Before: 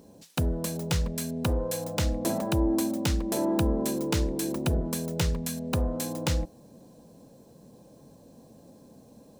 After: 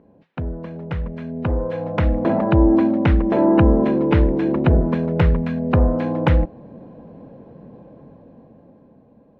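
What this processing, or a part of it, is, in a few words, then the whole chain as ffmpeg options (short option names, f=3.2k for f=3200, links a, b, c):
action camera in a waterproof case: -af "lowpass=f=2.2k:w=0.5412,lowpass=f=2.2k:w=1.3066,dynaudnorm=f=320:g=11:m=13dB" -ar 48000 -c:a aac -b:a 48k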